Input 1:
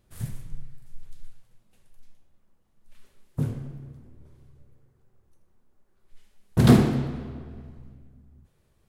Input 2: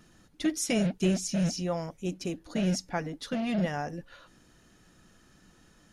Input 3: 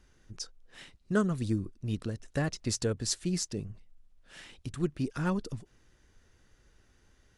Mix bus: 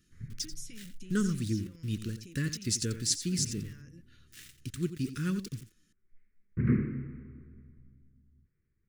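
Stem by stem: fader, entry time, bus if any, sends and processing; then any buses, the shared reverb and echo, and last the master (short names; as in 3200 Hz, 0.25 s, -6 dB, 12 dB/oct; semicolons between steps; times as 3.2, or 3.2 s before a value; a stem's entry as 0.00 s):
-9.5 dB, 0.00 s, no send, no echo send, elliptic low-pass 2200 Hz, stop band 40 dB
-11.5 dB, 0.00 s, no send, no echo send, limiter -23.5 dBFS, peak gain reduction 9 dB; compressor, threshold -34 dBFS, peak gain reduction 7 dB
-0.5 dB, 0.00 s, no send, echo send -12 dB, HPF 48 Hz 12 dB/oct; sample gate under -46 dBFS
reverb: off
echo: echo 87 ms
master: Butterworth band-stop 750 Hz, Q 0.6; high shelf 4500 Hz +5.5 dB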